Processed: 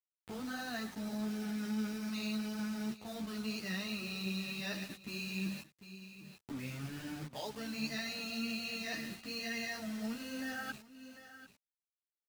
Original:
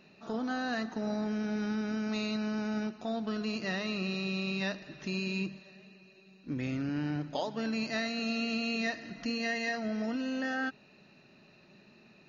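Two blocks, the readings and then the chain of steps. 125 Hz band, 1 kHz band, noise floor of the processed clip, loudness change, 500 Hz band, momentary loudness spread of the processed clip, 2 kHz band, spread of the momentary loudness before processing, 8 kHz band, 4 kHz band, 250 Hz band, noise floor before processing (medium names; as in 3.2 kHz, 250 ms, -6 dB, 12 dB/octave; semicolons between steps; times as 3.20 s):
-5.5 dB, -8.0 dB, under -85 dBFS, -5.5 dB, -10.0 dB, 13 LU, -5.5 dB, 5 LU, no reading, -2.5 dB, -6.0 dB, -60 dBFS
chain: gate -47 dBFS, range -8 dB; reverse; compression 5:1, threshold -45 dBFS, peak gain reduction 14.5 dB; reverse; tilt EQ +3 dB/octave; level-controlled noise filter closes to 370 Hz, open at -44.5 dBFS; bit crusher 9-bit; on a send: delay 746 ms -17.5 dB; on the sum: upward compressor, threshold -51 dBFS; peaking EQ 130 Hz +12.5 dB 2 oct; three-phase chorus; trim +6.5 dB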